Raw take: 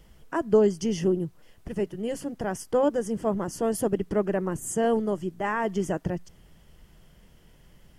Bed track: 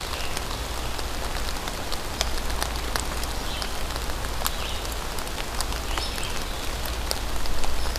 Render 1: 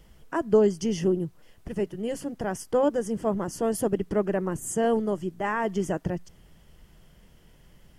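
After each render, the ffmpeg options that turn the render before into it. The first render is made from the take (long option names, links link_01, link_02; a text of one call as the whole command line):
ffmpeg -i in.wav -af anull out.wav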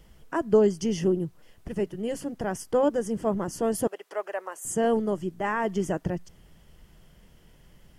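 ffmpeg -i in.wav -filter_complex "[0:a]asettb=1/sr,asplit=3[link_01][link_02][link_03];[link_01]atrim=end=3.874[link_04];[link_02]atrim=start=3.87:end=4.65,asetpts=PTS-STARTPTS,afade=type=in:duration=0.004:curve=qsin,afade=type=out:start_time=0.776:duration=0.004:curve=qsin,highpass=frequency=580:width=0.5412,highpass=frequency=580:width=1.3066[link_05];[link_03]atrim=start=4.646[link_06];[link_04][link_05]acrossfade=duration=0.004:curve1=hsin:curve2=qsin[link_07];[link_07][link_06]acrossfade=duration=0.004:curve1=qsin:curve2=hsin" out.wav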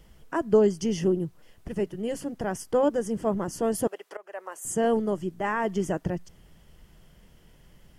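ffmpeg -i in.wav -filter_complex "[0:a]asplit=2[link_01][link_02];[link_01]atrim=end=4.17,asetpts=PTS-STARTPTS,afade=type=out:start_time=4.166:duration=0.004:curve=hsin:silence=0.0841395[link_03];[link_02]atrim=start=4.17,asetpts=PTS-STARTPTS,afade=type=in:duration=0.4:silence=0.0841395[link_04];[link_03][link_04]concat=n=2:v=0:a=1" out.wav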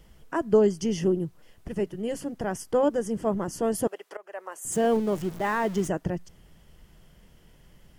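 ffmpeg -i in.wav -filter_complex "[0:a]asettb=1/sr,asplit=3[link_01][link_02][link_03];[link_01]atrim=end=4.724[link_04];[link_02]atrim=start=4.72:end=5.88,asetpts=PTS-STARTPTS,afade=type=in:duration=0.004:curve=qsin,afade=type=out:start_time=1.156:duration=0.004:curve=qsin,aeval=exprs='val(0)+0.5*0.015*sgn(val(0))':channel_layout=same[link_05];[link_03]atrim=start=5.876[link_06];[link_04][link_05]acrossfade=duration=0.004:curve1=hsin:curve2=qsin[link_07];[link_07][link_06]acrossfade=duration=0.004:curve1=qsin:curve2=hsin" out.wav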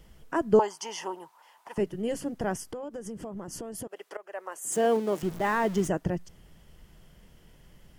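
ffmpeg -i in.wav -filter_complex "[0:a]asettb=1/sr,asplit=3[link_01][link_02][link_03];[link_01]atrim=end=0.594[link_04];[link_02]atrim=start=0.59:end=1.78,asetpts=PTS-STARTPTS,afade=type=in:duration=0.004:curve=qsin,afade=type=out:start_time=1.186:duration=0.004:curve=qsin,highpass=frequency=920:width_type=q:width=10[link_05];[link_03]atrim=start=1.776[link_06];[link_04][link_05]acrossfade=duration=0.004:curve1=hsin:curve2=qsin[link_07];[link_07][link_06]acrossfade=duration=0.004:curve1=qsin:curve2=hsin,asettb=1/sr,asplit=3[link_08][link_09][link_10];[link_08]atrim=end=2.584[link_11];[link_09]atrim=start=2.58:end=4.05,asetpts=PTS-STARTPTS,afade=type=in:duration=0.004:curve=qsin,afade=type=out:start_time=1.466:duration=0.004:curve=qsin,acompressor=threshold=-34dB:ratio=10:attack=3.2:release=140:knee=1:detection=peak[link_12];[link_10]atrim=start=4.046[link_13];[link_11][link_12]acrossfade=duration=0.004:curve1=hsin:curve2=qsin[link_14];[link_14][link_13]acrossfade=duration=0.004:curve1=qsin:curve2=hsin,asettb=1/sr,asplit=3[link_15][link_16][link_17];[link_15]atrim=end=4.594[link_18];[link_16]atrim=start=4.59:end=5.23,asetpts=PTS-STARTPTS,afade=type=in:duration=0.004:curve=qsin,afade=type=out:start_time=0.636:duration=0.004:curve=qsin,highpass=270[link_19];[link_17]atrim=start=5.226[link_20];[link_18][link_19]acrossfade=duration=0.004:curve1=hsin:curve2=qsin[link_21];[link_21][link_20]acrossfade=duration=0.004:curve1=qsin:curve2=hsin" out.wav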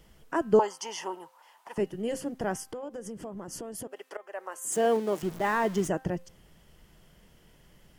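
ffmpeg -i in.wav -af "lowshelf=frequency=150:gain=-5.5,bandreject=frequency=261.5:width_type=h:width=4,bandreject=frequency=523:width_type=h:width=4,bandreject=frequency=784.5:width_type=h:width=4,bandreject=frequency=1046:width_type=h:width=4,bandreject=frequency=1307.5:width_type=h:width=4,bandreject=frequency=1569:width_type=h:width=4,bandreject=frequency=1830.5:width_type=h:width=4,bandreject=frequency=2092:width_type=h:width=4,bandreject=frequency=2353.5:width_type=h:width=4,bandreject=frequency=2615:width_type=h:width=4,bandreject=frequency=2876.5:width_type=h:width=4,bandreject=frequency=3138:width_type=h:width=4,bandreject=frequency=3399.5:width_type=h:width=4,bandreject=frequency=3661:width_type=h:width=4" out.wav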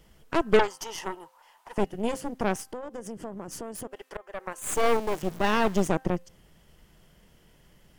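ffmpeg -i in.wav -af "aeval=exprs='0.316*(cos(1*acos(clip(val(0)/0.316,-1,1)))-cos(1*PI/2))+0.0631*(cos(8*acos(clip(val(0)/0.316,-1,1)))-cos(8*PI/2))':channel_layout=same" out.wav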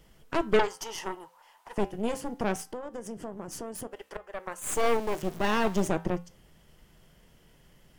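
ffmpeg -i in.wav -filter_complex "[0:a]flanger=delay=7.2:depth=2.2:regen=-82:speed=0.27:shape=triangular,asplit=2[link_01][link_02];[link_02]asoftclip=type=tanh:threshold=-26dB,volume=-5dB[link_03];[link_01][link_03]amix=inputs=2:normalize=0" out.wav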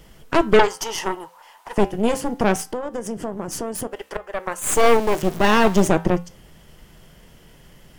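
ffmpeg -i in.wav -af "volume=10.5dB,alimiter=limit=-3dB:level=0:latency=1" out.wav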